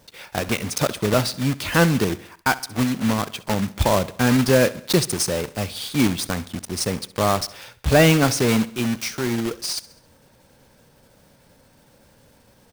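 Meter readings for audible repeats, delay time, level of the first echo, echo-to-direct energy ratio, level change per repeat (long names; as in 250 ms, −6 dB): 3, 67 ms, −19.0 dB, −17.5 dB, −5.5 dB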